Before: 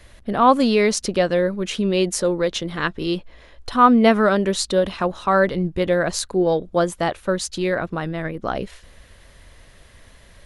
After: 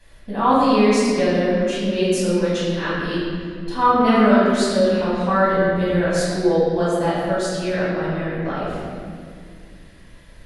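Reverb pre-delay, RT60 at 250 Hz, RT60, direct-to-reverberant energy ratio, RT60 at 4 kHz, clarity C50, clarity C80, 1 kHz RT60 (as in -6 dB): 4 ms, 3.4 s, 2.2 s, -10.0 dB, 1.4 s, -2.5 dB, -0.5 dB, 1.9 s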